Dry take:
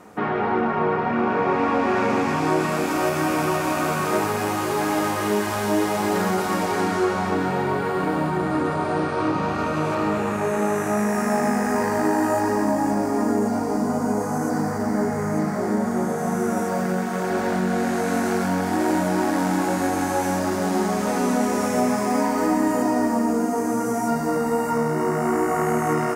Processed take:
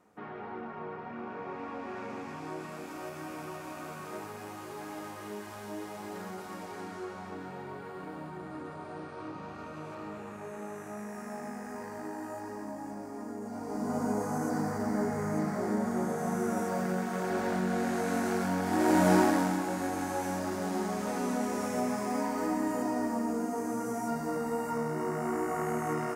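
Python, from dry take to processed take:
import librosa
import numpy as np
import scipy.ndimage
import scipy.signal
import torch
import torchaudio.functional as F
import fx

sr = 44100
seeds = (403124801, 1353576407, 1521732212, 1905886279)

y = fx.gain(x, sr, db=fx.line((13.4, -19.0), (13.98, -8.0), (18.63, -8.0), (19.13, 0.0), (19.63, -10.5)))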